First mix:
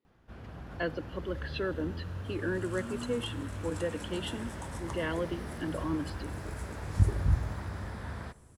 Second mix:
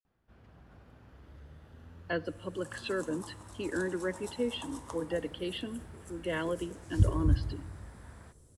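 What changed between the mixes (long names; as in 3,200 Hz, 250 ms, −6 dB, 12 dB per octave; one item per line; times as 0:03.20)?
speech: entry +1.30 s
first sound −12.0 dB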